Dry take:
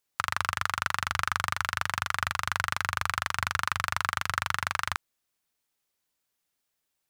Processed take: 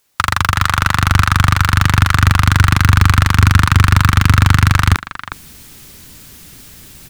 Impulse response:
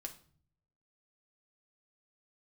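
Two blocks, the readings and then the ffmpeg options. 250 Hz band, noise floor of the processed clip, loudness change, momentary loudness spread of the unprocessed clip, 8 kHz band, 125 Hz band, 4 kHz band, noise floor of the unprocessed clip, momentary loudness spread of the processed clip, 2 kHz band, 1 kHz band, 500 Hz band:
+31.0 dB, -39 dBFS, +17.5 dB, 1 LU, +14.0 dB, +30.5 dB, +14.0 dB, -81 dBFS, 5 LU, +13.0 dB, +13.0 dB, +14.0 dB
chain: -filter_complex "[0:a]asplit=2[a][b];[b]adelay=360,highpass=300,lowpass=3.4k,asoftclip=type=hard:threshold=-16.5dB,volume=-17dB[c];[a][c]amix=inputs=2:normalize=0,asubboost=boost=7.5:cutoff=240,areverse,acompressor=mode=upward:threshold=-38dB:ratio=2.5,areverse,apsyclip=20.5dB,volume=-1.5dB"

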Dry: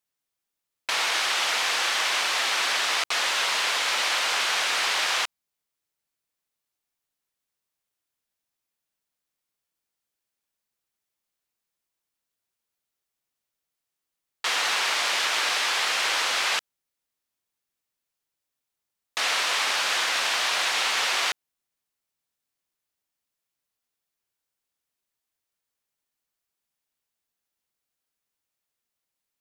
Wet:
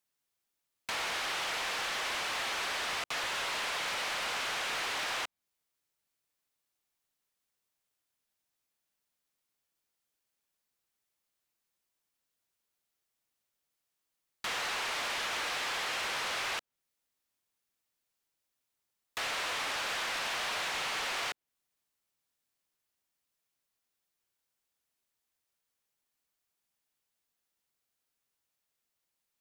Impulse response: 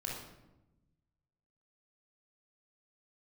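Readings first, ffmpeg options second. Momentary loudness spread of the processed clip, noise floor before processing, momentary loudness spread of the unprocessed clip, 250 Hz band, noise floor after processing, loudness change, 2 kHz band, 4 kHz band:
4 LU, -85 dBFS, 4 LU, -3.0 dB, -85 dBFS, -10.0 dB, -9.5 dB, -11.0 dB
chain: -filter_complex "[0:a]acrossover=split=670|3300[a][b][c];[a]acompressor=threshold=-42dB:ratio=4[d];[b]acompressor=threshold=-33dB:ratio=4[e];[c]acompressor=threshold=-42dB:ratio=4[f];[d][e][f]amix=inputs=3:normalize=0,volume=31.5dB,asoftclip=hard,volume=-31.5dB"

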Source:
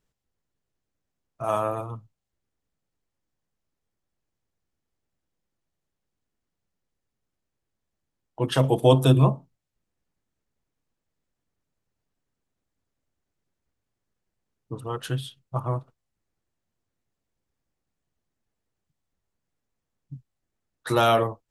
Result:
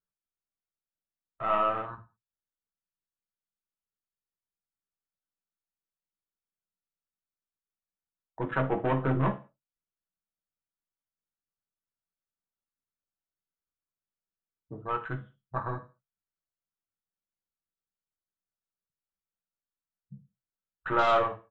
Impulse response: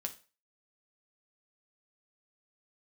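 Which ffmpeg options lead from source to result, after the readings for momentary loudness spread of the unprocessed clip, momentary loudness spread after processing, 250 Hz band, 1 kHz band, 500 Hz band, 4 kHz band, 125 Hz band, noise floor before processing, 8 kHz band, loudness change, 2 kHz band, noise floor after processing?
19 LU, 17 LU, -7.5 dB, -1.5 dB, -7.0 dB, -12.0 dB, -11.0 dB, -83 dBFS, under -20 dB, -6.0 dB, 0.0 dB, under -85 dBFS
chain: -filter_complex "[0:a]lowpass=f=1.4k:t=q:w=3.6,aeval=exprs='0.631*(cos(1*acos(clip(val(0)/0.631,-1,1)))-cos(1*PI/2))+0.0708*(cos(6*acos(clip(val(0)/0.631,-1,1)))-cos(6*PI/2))':c=same,aresample=8000,asoftclip=type=tanh:threshold=-12.5dB,aresample=44100,afwtdn=0.0251[a];[1:a]atrim=start_sample=2205,afade=t=out:st=0.27:d=0.01,atrim=end_sample=12348[b];[a][b]afir=irnorm=-1:irlink=0,volume=-4dB"

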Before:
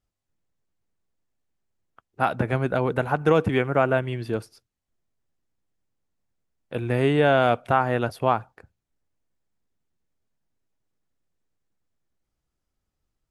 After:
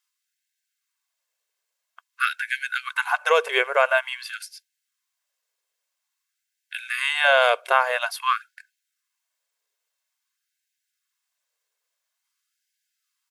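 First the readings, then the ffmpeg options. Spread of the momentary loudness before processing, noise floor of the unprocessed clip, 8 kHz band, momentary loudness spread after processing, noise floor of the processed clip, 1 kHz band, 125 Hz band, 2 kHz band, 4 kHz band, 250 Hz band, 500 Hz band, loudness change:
10 LU, -83 dBFS, n/a, 16 LU, -82 dBFS, +1.0 dB, under -40 dB, +8.0 dB, +9.5 dB, under -20 dB, -2.5 dB, +1.0 dB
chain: -af "tiltshelf=f=910:g=-8.5,aecho=1:1:1.9:0.41,afftfilt=real='re*gte(b*sr/1024,380*pow(1500/380,0.5+0.5*sin(2*PI*0.49*pts/sr)))':imag='im*gte(b*sr/1024,380*pow(1500/380,0.5+0.5*sin(2*PI*0.49*pts/sr)))':win_size=1024:overlap=0.75,volume=2.5dB"

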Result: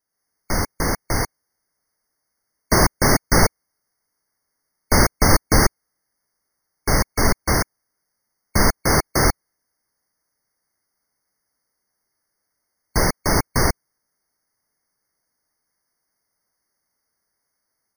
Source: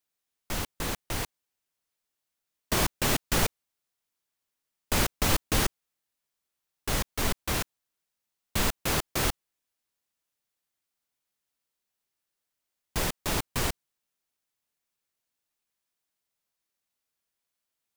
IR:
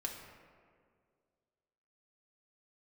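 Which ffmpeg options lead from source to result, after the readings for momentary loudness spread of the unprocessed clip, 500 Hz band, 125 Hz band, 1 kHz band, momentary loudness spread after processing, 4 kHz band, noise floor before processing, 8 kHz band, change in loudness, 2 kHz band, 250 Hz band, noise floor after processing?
9 LU, +11.5 dB, +11.5 dB, +11.5 dB, 9 LU, +5.5 dB, -85 dBFS, +8.5 dB, +9.5 dB, +10.0 dB, +11.5 dB, -77 dBFS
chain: -af "dynaudnorm=f=100:g=3:m=6.5dB,afftfilt=real='re*eq(mod(floor(b*sr/1024/2200),2),0)':imag='im*eq(mod(floor(b*sr/1024/2200),2),0)':win_size=1024:overlap=0.75,volume=5dB"

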